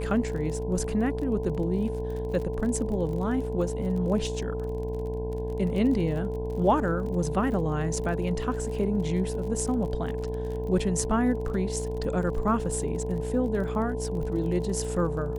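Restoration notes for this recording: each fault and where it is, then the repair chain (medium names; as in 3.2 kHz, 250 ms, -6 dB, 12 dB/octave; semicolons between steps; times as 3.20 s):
buzz 60 Hz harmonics 17 -33 dBFS
crackle 40 per s -35 dBFS
whine 440 Hz -32 dBFS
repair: de-click; de-hum 60 Hz, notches 17; band-stop 440 Hz, Q 30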